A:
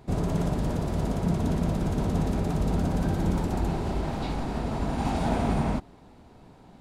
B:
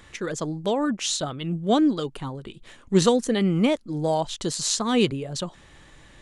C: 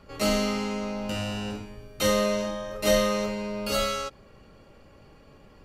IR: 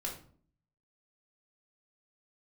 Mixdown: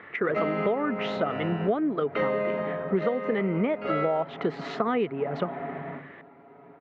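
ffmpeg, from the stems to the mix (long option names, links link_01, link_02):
-filter_complex "[0:a]aecho=1:1:7.2:0.78,acompressor=threshold=-37dB:ratio=2.5,adelay=200,volume=-6.5dB,asplit=2[link_01][link_02];[link_02]volume=-6dB[link_03];[1:a]volume=2dB[link_04];[2:a]adelay=150,volume=-5dB,asplit=2[link_05][link_06];[link_06]volume=-6.5dB[link_07];[3:a]atrim=start_sample=2205[link_08];[link_03][link_07]amix=inputs=2:normalize=0[link_09];[link_09][link_08]afir=irnorm=-1:irlink=0[link_10];[link_01][link_04][link_05][link_10]amix=inputs=4:normalize=0,highpass=frequency=120:width=0.5412,highpass=frequency=120:width=1.3066,equalizer=frequency=120:width_type=q:width=4:gain=-9,equalizer=frequency=430:width_type=q:width=4:gain=8,equalizer=frequency=680:width_type=q:width=4:gain=7,equalizer=frequency=1300:width_type=q:width=4:gain=8,equalizer=frequency=2000:width_type=q:width=4:gain=9,lowpass=frequency=2400:width=0.5412,lowpass=frequency=2400:width=1.3066,acompressor=threshold=-22dB:ratio=12"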